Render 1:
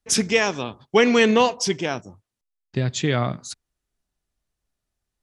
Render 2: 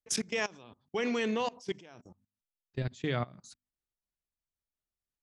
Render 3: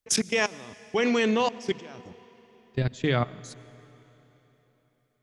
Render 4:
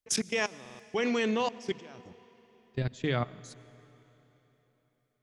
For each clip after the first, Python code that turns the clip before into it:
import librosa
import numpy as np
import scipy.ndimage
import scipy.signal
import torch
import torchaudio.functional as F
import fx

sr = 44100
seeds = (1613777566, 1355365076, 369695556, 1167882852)

y1 = fx.hum_notches(x, sr, base_hz=50, count=5)
y1 = fx.level_steps(y1, sr, step_db=22)
y1 = y1 * librosa.db_to_amplitude(-8.5)
y2 = fx.rev_freeverb(y1, sr, rt60_s=3.8, hf_ratio=0.9, predelay_ms=65, drr_db=19.0)
y2 = y2 * librosa.db_to_amplitude(7.5)
y3 = fx.buffer_glitch(y2, sr, at_s=(0.61,), block=2048, repeats=3)
y3 = y3 * librosa.db_to_amplitude(-5.0)